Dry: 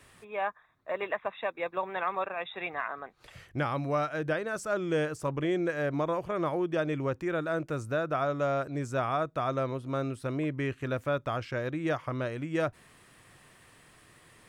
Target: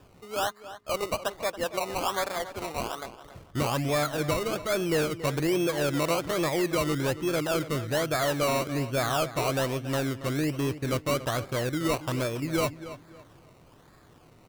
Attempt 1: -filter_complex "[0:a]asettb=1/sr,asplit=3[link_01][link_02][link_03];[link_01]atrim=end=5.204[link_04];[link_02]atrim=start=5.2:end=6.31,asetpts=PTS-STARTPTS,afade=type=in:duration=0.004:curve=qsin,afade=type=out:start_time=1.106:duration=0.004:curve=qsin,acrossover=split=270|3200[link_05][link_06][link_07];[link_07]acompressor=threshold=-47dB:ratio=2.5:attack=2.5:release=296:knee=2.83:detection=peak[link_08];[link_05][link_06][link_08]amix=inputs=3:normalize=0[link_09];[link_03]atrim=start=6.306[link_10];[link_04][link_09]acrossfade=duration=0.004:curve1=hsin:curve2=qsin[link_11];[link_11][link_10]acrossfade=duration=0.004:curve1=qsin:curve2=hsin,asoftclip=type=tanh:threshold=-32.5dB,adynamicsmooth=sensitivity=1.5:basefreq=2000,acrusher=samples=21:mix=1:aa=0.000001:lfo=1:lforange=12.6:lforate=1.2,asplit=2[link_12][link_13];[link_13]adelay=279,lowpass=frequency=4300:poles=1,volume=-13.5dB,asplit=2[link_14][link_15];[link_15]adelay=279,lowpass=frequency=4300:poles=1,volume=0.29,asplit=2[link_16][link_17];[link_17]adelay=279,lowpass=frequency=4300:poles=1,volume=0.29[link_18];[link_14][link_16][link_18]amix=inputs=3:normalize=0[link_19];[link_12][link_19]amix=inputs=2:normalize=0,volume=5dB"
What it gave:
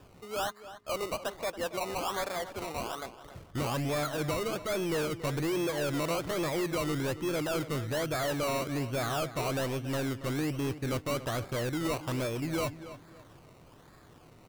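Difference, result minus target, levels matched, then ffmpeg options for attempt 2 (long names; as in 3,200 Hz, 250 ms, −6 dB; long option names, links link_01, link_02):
soft clipping: distortion +9 dB
-filter_complex "[0:a]asettb=1/sr,asplit=3[link_01][link_02][link_03];[link_01]atrim=end=5.204[link_04];[link_02]atrim=start=5.2:end=6.31,asetpts=PTS-STARTPTS,afade=type=in:duration=0.004:curve=qsin,afade=type=out:start_time=1.106:duration=0.004:curve=qsin,acrossover=split=270|3200[link_05][link_06][link_07];[link_07]acompressor=threshold=-47dB:ratio=2.5:attack=2.5:release=296:knee=2.83:detection=peak[link_08];[link_05][link_06][link_08]amix=inputs=3:normalize=0[link_09];[link_03]atrim=start=6.306[link_10];[link_04][link_09]acrossfade=duration=0.004:curve1=hsin:curve2=qsin[link_11];[link_11][link_10]acrossfade=duration=0.004:curve1=qsin:curve2=hsin,asoftclip=type=tanh:threshold=-23.5dB,adynamicsmooth=sensitivity=1.5:basefreq=2000,acrusher=samples=21:mix=1:aa=0.000001:lfo=1:lforange=12.6:lforate=1.2,asplit=2[link_12][link_13];[link_13]adelay=279,lowpass=frequency=4300:poles=1,volume=-13.5dB,asplit=2[link_14][link_15];[link_15]adelay=279,lowpass=frequency=4300:poles=1,volume=0.29,asplit=2[link_16][link_17];[link_17]adelay=279,lowpass=frequency=4300:poles=1,volume=0.29[link_18];[link_14][link_16][link_18]amix=inputs=3:normalize=0[link_19];[link_12][link_19]amix=inputs=2:normalize=0,volume=5dB"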